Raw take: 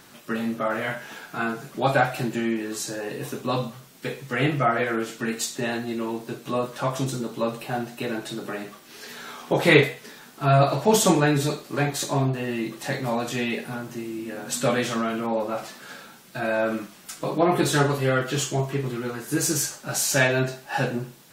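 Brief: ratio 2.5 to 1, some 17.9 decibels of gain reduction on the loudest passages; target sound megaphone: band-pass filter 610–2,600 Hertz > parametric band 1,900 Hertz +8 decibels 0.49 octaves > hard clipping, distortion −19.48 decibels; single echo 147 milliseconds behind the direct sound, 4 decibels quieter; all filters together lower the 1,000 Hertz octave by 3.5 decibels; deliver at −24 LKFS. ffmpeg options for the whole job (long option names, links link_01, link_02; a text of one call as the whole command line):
ffmpeg -i in.wav -af "equalizer=frequency=1000:width_type=o:gain=-4.5,acompressor=threshold=-39dB:ratio=2.5,highpass=610,lowpass=2600,equalizer=frequency=1900:width_type=o:width=0.49:gain=8,aecho=1:1:147:0.631,asoftclip=type=hard:threshold=-30dB,volume=16dB" out.wav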